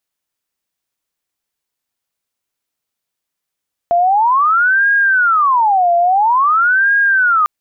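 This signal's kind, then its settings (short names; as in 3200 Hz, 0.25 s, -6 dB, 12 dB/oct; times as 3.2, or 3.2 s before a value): siren wail 689–1630 Hz 0.49/s sine -9 dBFS 3.55 s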